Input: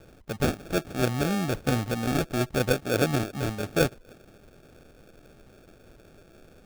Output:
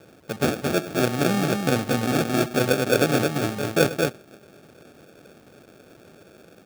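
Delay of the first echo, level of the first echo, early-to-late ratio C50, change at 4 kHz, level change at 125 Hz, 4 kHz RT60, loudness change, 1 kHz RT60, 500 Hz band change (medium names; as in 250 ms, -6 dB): 64 ms, -18.5 dB, no reverb, +5.5 dB, +1.5 dB, no reverb, +4.5 dB, no reverb, +5.5 dB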